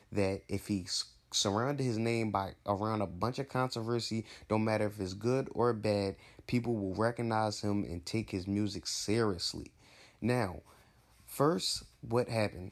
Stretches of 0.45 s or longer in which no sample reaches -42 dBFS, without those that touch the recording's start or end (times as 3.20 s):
9.66–10.22 s
10.59–11.29 s